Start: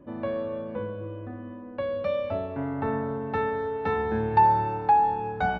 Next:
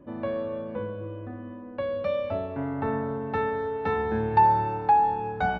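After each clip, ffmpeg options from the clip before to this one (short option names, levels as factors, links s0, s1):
-af anull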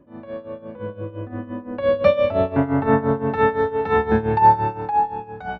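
-af "tremolo=f=5.8:d=0.8,dynaudnorm=f=350:g=7:m=5.96"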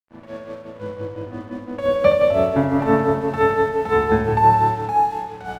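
-filter_complex "[0:a]aeval=exprs='sgn(val(0))*max(abs(val(0))-0.00708,0)':c=same,asplit=2[s0][s1];[s1]aecho=0:1:71|170|233|752:0.562|0.376|0.15|0.1[s2];[s0][s2]amix=inputs=2:normalize=0"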